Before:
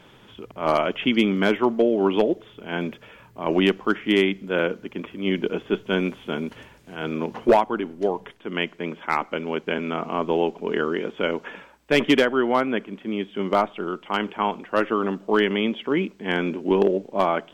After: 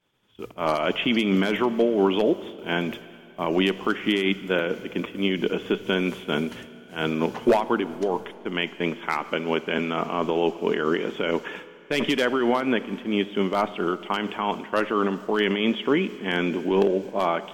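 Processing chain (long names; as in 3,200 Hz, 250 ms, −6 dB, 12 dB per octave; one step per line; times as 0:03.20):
downward expander −36 dBFS
high-shelf EQ 3,600 Hz +8.5 dB
brickwall limiter −14.5 dBFS, peak gain reduction 9.5 dB
amplitude tremolo 4.4 Hz, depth 38%
four-comb reverb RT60 2.9 s, combs from 26 ms, DRR 15.5 dB
level +4 dB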